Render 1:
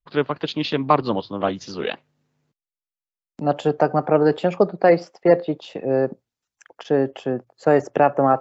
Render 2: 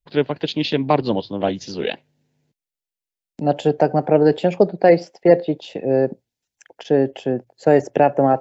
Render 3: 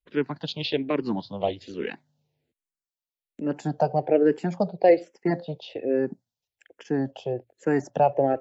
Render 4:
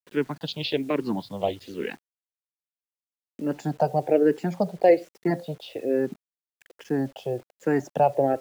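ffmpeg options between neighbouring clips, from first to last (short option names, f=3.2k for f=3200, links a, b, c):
-af "equalizer=f=1.2k:w=2.9:g=-14.5,volume=3dB"
-filter_complex "[0:a]asplit=2[a][b];[b]afreqshift=-1.2[c];[a][c]amix=inputs=2:normalize=1,volume=-4dB"
-af "acrusher=bits=8:mix=0:aa=0.000001"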